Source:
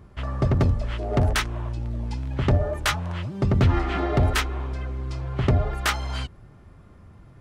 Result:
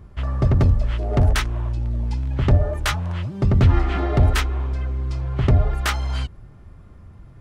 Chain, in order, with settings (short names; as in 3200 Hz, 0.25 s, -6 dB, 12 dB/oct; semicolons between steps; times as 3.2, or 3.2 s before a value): low shelf 89 Hz +9.5 dB